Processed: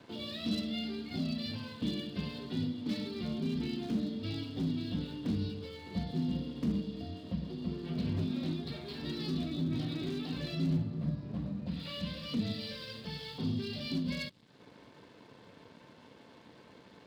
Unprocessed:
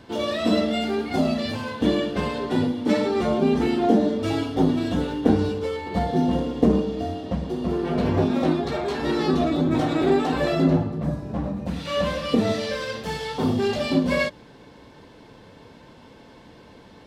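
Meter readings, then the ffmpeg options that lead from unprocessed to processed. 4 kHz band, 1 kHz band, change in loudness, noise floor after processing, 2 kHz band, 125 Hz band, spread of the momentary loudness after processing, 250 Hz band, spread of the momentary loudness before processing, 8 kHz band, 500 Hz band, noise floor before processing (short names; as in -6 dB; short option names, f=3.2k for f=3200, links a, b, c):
-8.0 dB, -23.5 dB, -13.0 dB, -58 dBFS, -16.0 dB, -8.5 dB, 21 LU, -12.5 dB, 8 LU, n/a, -21.0 dB, -48 dBFS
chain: -filter_complex "[0:a]aresample=11025,aresample=44100,asoftclip=type=hard:threshold=-15.5dB,acrossover=split=220|3000[a][b][c];[b]acompressor=threshold=-45dB:ratio=6[d];[a][d][c]amix=inputs=3:normalize=0,aeval=exprs='sgn(val(0))*max(abs(val(0))-0.00178,0)':c=same,highpass=110,bandreject=f=800:w=14,volume=-4dB"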